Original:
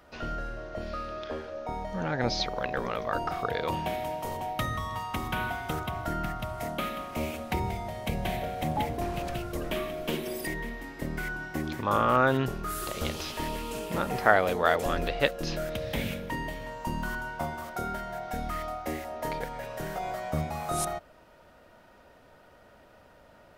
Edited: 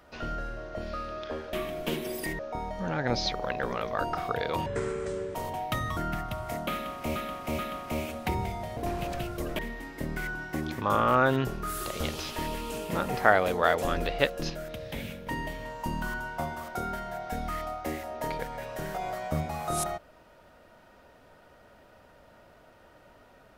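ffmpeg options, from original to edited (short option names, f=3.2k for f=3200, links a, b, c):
-filter_complex "[0:a]asplit=12[a][b][c][d][e][f][g][h][i][j][k][l];[a]atrim=end=1.532[m];[b]atrim=start=9.738:end=10.602[n];[c]atrim=start=1.528:end=3.804[o];[d]atrim=start=3.8:end=4.22,asetpts=PTS-STARTPTS,asetrate=26901,aresample=44100[p];[e]atrim=start=4.216:end=4.842[q];[f]atrim=start=6.078:end=7.272[r];[g]atrim=start=6.838:end=7.272[s];[h]atrim=start=6.838:end=8.022[t];[i]atrim=start=8.918:end=9.742[u];[j]atrim=start=10.598:end=15.512[v];[k]atrim=start=15.508:end=16.282,asetpts=PTS-STARTPTS,volume=-5.5dB[w];[l]atrim=start=16.278[x];[m][n]acrossfade=d=0.004:c1=hsin:c2=hsin[y];[y][o]acrossfade=d=0.004:c1=hsin:c2=hsin[z];[z][p]acrossfade=d=0.004:c1=hsin:c2=hsin[aa];[aa][q]acrossfade=d=0.004:c1=hsin:c2=hsin[ab];[ab][r]acrossfade=d=0.004:c1=hsin:c2=hsin[ac];[ac][s]acrossfade=d=0.004:c1=hsin:c2=hsin[ad];[ad][t]acrossfade=d=0.004:c1=hsin:c2=hsin[ae];[ae][u]acrossfade=d=0.004:c1=hsin:c2=hsin[af];[af][v]acrossfade=d=0.004:c1=hsin:c2=hsin[ag];[ag][w]acrossfade=d=0.004:c1=hsin:c2=hsin[ah];[ah][x]acrossfade=d=0.004:c1=hsin:c2=hsin"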